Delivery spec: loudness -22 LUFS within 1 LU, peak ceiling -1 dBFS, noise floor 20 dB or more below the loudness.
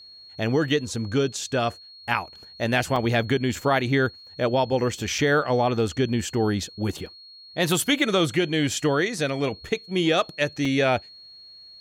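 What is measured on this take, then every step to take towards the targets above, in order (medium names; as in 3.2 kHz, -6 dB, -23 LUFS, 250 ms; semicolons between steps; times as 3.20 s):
dropouts 4; longest dropout 3.6 ms; steady tone 4.3 kHz; tone level -44 dBFS; loudness -24.0 LUFS; peak level -7.0 dBFS; loudness target -22.0 LUFS
-> interpolate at 2.96/5.18/7.06/10.65 s, 3.6 ms; band-stop 4.3 kHz, Q 30; trim +2 dB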